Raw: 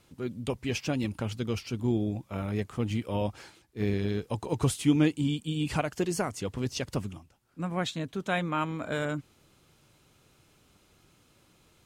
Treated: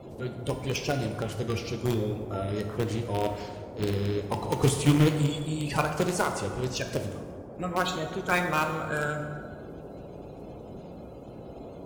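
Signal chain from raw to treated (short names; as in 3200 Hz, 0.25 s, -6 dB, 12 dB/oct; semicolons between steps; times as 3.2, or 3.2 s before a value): bin magnitudes rounded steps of 30 dB; bell 250 Hz -7.5 dB 0.73 oct; band noise 41–610 Hz -46 dBFS; in parallel at -9 dB: bit-crush 4-bit; on the sum: plate-style reverb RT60 1.7 s, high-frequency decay 0.55×, DRR 4.5 dB; gain +2 dB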